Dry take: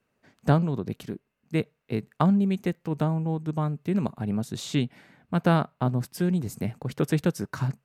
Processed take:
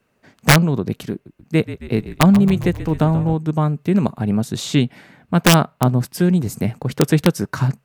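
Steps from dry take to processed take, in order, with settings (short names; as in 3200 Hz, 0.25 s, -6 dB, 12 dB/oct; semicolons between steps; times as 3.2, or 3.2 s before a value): wrapped overs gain 12.5 dB; 1.12–3.34 frequency-shifting echo 0.135 s, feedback 60%, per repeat -44 Hz, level -13.5 dB; gain +9 dB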